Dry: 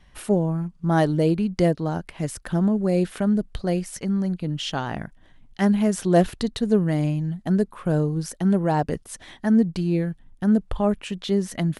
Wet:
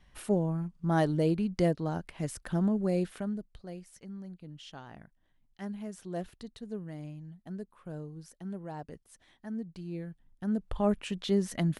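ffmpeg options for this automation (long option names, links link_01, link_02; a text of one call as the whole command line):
ffmpeg -i in.wav -af "volume=7.5dB,afade=type=out:start_time=2.87:duration=0.62:silence=0.237137,afade=type=in:start_time=9.65:duration=0.93:silence=0.398107,afade=type=in:start_time=10.58:duration=0.33:silence=0.473151" out.wav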